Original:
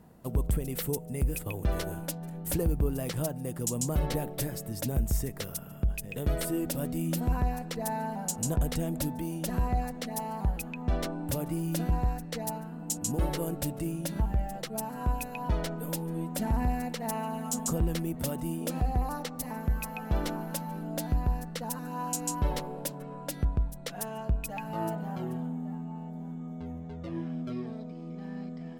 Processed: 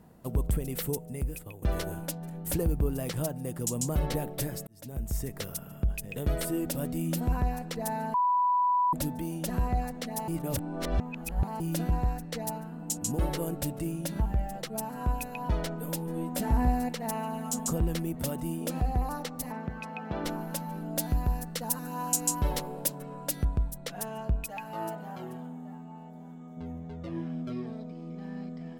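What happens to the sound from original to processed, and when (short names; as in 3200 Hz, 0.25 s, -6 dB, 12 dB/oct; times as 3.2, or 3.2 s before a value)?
0.89–1.62 fade out, to -12.5 dB
4.67–5.37 fade in
8.14–8.93 bleep 988 Hz -22 dBFS
10.28–11.6 reverse
16.06–16.89 doubler 16 ms -4 dB
19.52–20.25 BPF 140–3900 Hz
20.96–23.78 high shelf 5600 Hz +9 dB
24.44–26.57 low shelf 280 Hz -10.5 dB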